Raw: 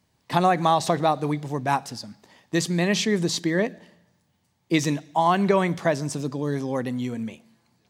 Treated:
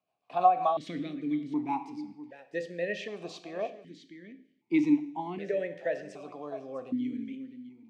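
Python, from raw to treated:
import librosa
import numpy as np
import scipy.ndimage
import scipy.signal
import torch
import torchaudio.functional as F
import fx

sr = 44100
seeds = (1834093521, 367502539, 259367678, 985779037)

p1 = fx.rev_double_slope(x, sr, seeds[0], early_s=0.7, late_s=2.3, knee_db=-25, drr_db=9.5)
p2 = fx.rotary_switch(p1, sr, hz=6.7, then_hz=0.7, switch_at_s=0.23)
p3 = p2 + fx.echo_single(p2, sr, ms=655, db=-14.0, dry=0)
p4 = fx.vowel_held(p3, sr, hz=1.3)
y = p4 * librosa.db_to_amplitude(3.5)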